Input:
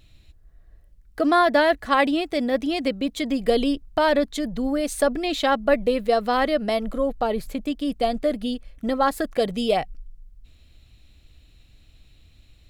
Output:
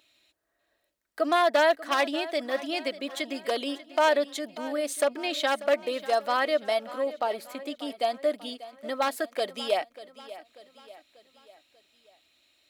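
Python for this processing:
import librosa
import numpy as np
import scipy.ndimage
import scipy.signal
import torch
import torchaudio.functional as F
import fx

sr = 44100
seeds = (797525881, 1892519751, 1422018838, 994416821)

p1 = np.minimum(x, 2.0 * 10.0 ** (-12.5 / 20.0) - x)
p2 = scipy.signal.sosfilt(scipy.signal.butter(2, 510.0, 'highpass', fs=sr, output='sos'), p1)
p3 = p2 + 0.36 * np.pad(p2, (int(3.2 * sr / 1000.0), 0))[:len(p2)]
p4 = p3 + fx.echo_feedback(p3, sr, ms=590, feedback_pct=49, wet_db=-16.5, dry=0)
y = F.gain(torch.from_numpy(p4), -3.0).numpy()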